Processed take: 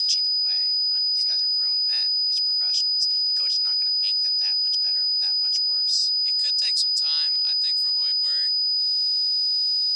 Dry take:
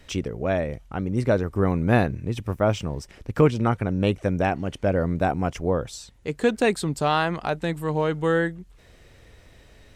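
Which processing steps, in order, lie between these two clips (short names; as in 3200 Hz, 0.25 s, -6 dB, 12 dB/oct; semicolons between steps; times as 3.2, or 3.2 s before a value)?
in parallel at 0 dB: upward compressor, threshold -24 dBFS; on the sum: whine 4900 Hz -32 dBFS; frequency shift +73 Hz; ladder band-pass 5300 Hz, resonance 80%; gain +8.5 dB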